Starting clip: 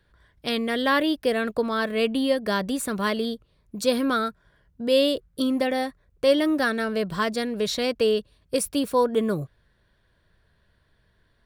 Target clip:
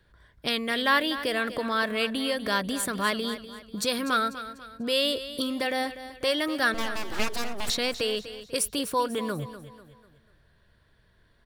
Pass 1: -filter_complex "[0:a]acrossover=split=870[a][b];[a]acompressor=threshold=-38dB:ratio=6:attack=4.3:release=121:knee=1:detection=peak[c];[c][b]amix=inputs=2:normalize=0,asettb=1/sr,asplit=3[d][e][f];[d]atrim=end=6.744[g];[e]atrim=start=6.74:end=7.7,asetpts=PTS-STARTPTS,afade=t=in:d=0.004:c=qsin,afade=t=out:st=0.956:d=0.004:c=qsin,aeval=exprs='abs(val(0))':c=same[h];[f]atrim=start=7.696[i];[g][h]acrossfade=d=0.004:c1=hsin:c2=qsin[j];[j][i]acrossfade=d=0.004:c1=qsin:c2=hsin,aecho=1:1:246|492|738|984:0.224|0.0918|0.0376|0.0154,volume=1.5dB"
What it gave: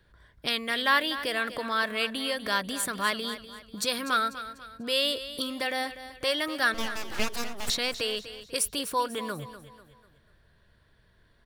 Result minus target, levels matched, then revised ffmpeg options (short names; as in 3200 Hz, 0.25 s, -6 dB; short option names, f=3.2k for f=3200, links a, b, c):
compressor: peak gain reduction +6 dB
-filter_complex "[0:a]acrossover=split=870[a][b];[a]acompressor=threshold=-31dB:ratio=6:attack=4.3:release=121:knee=1:detection=peak[c];[c][b]amix=inputs=2:normalize=0,asettb=1/sr,asplit=3[d][e][f];[d]atrim=end=6.744[g];[e]atrim=start=6.74:end=7.7,asetpts=PTS-STARTPTS,afade=t=in:d=0.004:c=qsin,afade=t=out:st=0.956:d=0.004:c=qsin,aeval=exprs='abs(val(0))':c=same[h];[f]atrim=start=7.696[i];[g][h]acrossfade=d=0.004:c1=hsin:c2=qsin[j];[j][i]acrossfade=d=0.004:c1=qsin:c2=hsin,aecho=1:1:246|492|738|984:0.224|0.0918|0.0376|0.0154,volume=1.5dB"